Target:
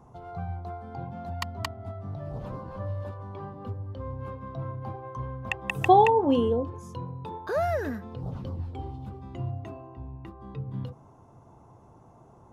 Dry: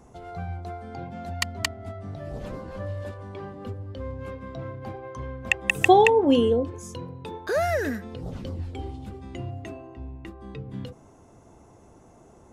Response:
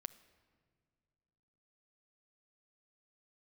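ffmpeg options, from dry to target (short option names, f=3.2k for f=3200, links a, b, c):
-af "equalizer=f=125:t=o:w=1:g=10,equalizer=f=1k:t=o:w=1:g=10,equalizer=f=2k:t=o:w=1:g=-5,equalizer=f=8k:t=o:w=1:g=-8,volume=-6dB"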